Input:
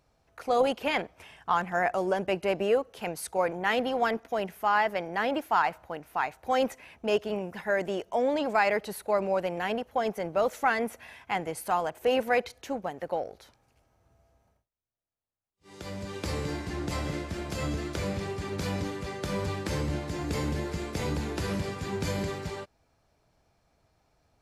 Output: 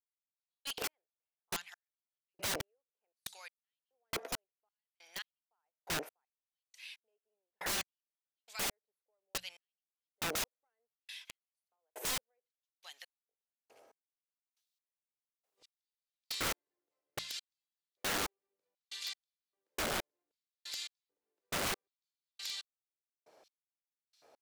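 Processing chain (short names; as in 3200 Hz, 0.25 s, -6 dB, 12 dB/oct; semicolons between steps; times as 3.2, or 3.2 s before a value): compressor 2.5:1, threshold -33 dBFS, peak gain reduction 9.5 dB; LFO high-pass square 0.64 Hz 460–3800 Hz; notches 60/120/180 Hz; step gate "...x...x" 69 bpm -60 dB; wrapped overs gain 34 dB; gain +4.5 dB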